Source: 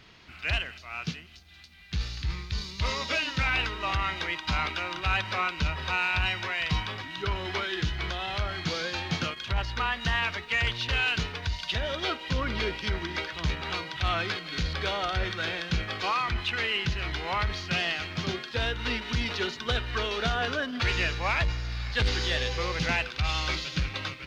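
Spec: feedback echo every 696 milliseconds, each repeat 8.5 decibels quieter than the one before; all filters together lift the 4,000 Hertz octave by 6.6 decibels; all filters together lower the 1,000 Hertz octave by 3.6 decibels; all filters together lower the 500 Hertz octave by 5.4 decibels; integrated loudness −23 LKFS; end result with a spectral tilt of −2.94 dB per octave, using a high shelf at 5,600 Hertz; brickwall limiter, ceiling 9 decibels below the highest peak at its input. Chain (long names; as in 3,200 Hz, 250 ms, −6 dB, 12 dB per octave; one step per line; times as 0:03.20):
parametric band 500 Hz −6 dB
parametric band 1,000 Hz −4 dB
parametric band 4,000 Hz +7.5 dB
high-shelf EQ 5,600 Hz +4 dB
brickwall limiter −21 dBFS
repeating echo 696 ms, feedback 38%, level −8.5 dB
level +6 dB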